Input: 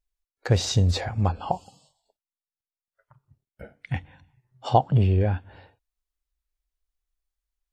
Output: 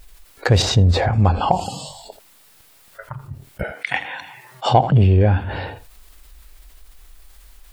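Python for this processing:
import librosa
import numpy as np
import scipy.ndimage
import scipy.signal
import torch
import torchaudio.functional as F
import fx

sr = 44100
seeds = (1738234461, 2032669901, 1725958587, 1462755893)

p1 = 10.0 ** (-13.0 / 20.0) * np.tanh(x / 10.0 ** (-13.0 / 20.0))
p2 = x + F.gain(torch.from_numpy(p1), -9.0).numpy()
p3 = fx.high_shelf(p2, sr, hz=2700.0, db=-11.5, at=(0.62, 1.13))
p4 = fx.highpass(p3, sr, hz=730.0, slope=12, at=(3.63, 4.66))
p5 = fx.peak_eq(p4, sr, hz=6100.0, db=-4.0, octaves=0.51)
p6 = p5 + fx.echo_single(p5, sr, ms=82, db=-24.0, dry=0)
p7 = fx.env_flatten(p6, sr, amount_pct=50)
y = F.gain(torch.from_numpy(p7), 2.0).numpy()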